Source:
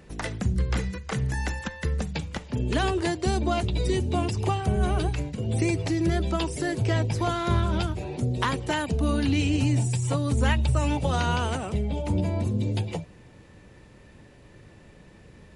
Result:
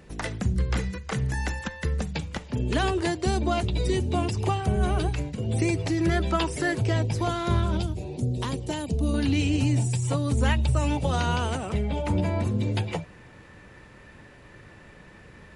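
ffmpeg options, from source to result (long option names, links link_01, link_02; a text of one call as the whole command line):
ffmpeg -i in.wav -af "asetnsamples=nb_out_samples=441:pad=0,asendcmd='5.98 equalizer g 6.5;6.81 equalizer g -2;7.77 equalizer g -12.5;9.14 equalizer g -1;11.7 equalizer g 8.5',equalizer=frequency=1500:width_type=o:width=1.7:gain=0.5" out.wav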